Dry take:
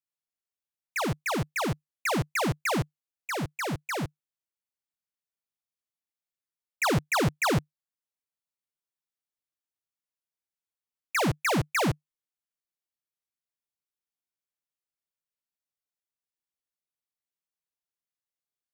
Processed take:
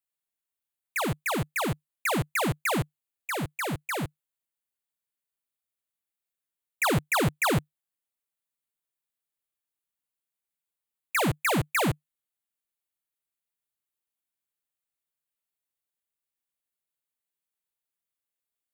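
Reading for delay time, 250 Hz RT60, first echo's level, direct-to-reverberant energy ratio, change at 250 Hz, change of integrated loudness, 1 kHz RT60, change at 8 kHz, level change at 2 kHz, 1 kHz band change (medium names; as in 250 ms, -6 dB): no echo, no reverb, no echo, no reverb, 0.0 dB, +0.5 dB, no reverb, +1.5 dB, +1.0 dB, +0.5 dB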